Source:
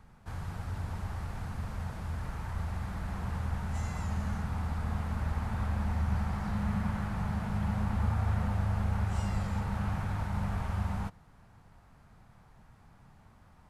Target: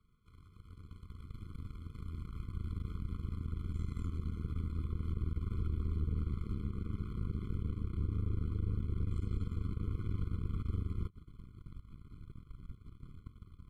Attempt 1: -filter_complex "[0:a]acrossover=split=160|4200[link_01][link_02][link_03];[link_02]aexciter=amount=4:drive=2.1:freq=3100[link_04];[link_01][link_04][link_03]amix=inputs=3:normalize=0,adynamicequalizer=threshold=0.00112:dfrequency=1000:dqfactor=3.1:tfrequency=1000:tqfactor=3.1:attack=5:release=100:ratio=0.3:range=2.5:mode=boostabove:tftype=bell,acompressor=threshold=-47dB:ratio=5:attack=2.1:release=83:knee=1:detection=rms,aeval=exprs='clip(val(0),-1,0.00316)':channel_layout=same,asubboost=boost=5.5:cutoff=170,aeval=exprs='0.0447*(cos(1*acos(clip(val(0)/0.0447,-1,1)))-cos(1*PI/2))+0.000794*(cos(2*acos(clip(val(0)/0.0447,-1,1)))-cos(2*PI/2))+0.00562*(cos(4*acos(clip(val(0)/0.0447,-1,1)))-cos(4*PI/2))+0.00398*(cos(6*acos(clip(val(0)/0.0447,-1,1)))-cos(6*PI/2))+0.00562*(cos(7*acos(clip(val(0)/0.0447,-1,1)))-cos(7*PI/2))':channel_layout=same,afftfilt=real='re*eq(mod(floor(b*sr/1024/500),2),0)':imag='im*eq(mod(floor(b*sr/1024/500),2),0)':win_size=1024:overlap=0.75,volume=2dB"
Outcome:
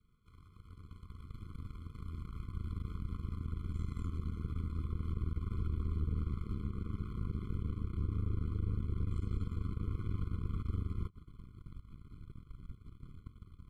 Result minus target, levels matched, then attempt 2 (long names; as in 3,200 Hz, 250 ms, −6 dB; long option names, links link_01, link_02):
1,000 Hz band +2.5 dB
-filter_complex "[0:a]acrossover=split=160|4200[link_01][link_02][link_03];[link_02]aexciter=amount=4:drive=2.1:freq=3100[link_04];[link_01][link_04][link_03]amix=inputs=3:normalize=0,acompressor=threshold=-47dB:ratio=5:attack=2.1:release=83:knee=1:detection=rms,aeval=exprs='clip(val(0),-1,0.00316)':channel_layout=same,asubboost=boost=5.5:cutoff=170,aeval=exprs='0.0447*(cos(1*acos(clip(val(0)/0.0447,-1,1)))-cos(1*PI/2))+0.000794*(cos(2*acos(clip(val(0)/0.0447,-1,1)))-cos(2*PI/2))+0.00562*(cos(4*acos(clip(val(0)/0.0447,-1,1)))-cos(4*PI/2))+0.00398*(cos(6*acos(clip(val(0)/0.0447,-1,1)))-cos(6*PI/2))+0.00562*(cos(7*acos(clip(val(0)/0.0447,-1,1)))-cos(7*PI/2))':channel_layout=same,afftfilt=real='re*eq(mod(floor(b*sr/1024/500),2),0)':imag='im*eq(mod(floor(b*sr/1024/500),2),0)':win_size=1024:overlap=0.75,volume=2dB"